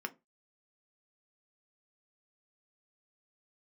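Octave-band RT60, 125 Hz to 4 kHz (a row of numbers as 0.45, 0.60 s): 0.35, 0.25, 0.25, 0.20, 0.20, 0.15 s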